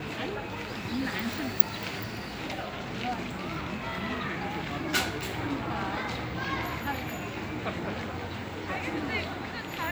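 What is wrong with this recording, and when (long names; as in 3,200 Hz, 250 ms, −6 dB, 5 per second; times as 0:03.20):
0:05.21: click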